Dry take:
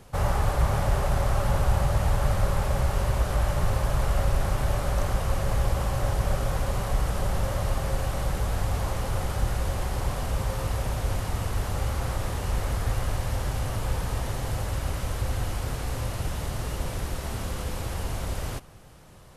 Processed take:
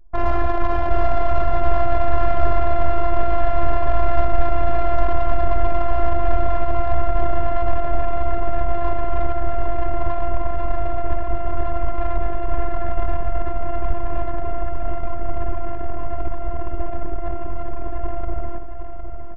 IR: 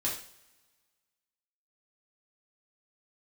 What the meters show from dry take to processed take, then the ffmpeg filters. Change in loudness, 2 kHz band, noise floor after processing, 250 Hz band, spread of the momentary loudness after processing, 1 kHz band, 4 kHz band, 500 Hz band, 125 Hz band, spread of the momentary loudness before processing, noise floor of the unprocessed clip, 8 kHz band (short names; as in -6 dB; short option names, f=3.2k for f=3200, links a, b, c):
+3.5 dB, +1.5 dB, -20 dBFS, +4.5 dB, 9 LU, +9.5 dB, n/a, +9.5 dB, -1.5 dB, 7 LU, -35 dBFS, under -25 dB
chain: -filter_complex "[0:a]apsyclip=17.5dB,lowpass=f=1.8k:p=1,bandreject=f=50:t=h:w=6,bandreject=f=100:t=h:w=6,bandreject=f=150:t=h:w=6,bandreject=f=200:t=h:w=6,adynamicequalizer=threshold=0.0112:dfrequency=240:dqfactor=5.4:tfrequency=240:tqfactor=5.4:attack=5:release=100:ratio=0.375:range=3.5:mode=cutabove:tftype=bell,areverse,acompressor=mode=upward:threshold=-23dB:ratio=2.5,areverse,afftfilt=real='hypot(re,im)*cos(PI*b)':imag='0':win_size=512:overlap=0.75,anlmdn=2510,asplit=2[a][b];[b]aecho=0:1:759|1518|2277|3036|3795:0.398|0.187|0.0879|0.0413|0.0194[c];[a][c]amix=inputs=2:normalize=0,volume=-4.5dB"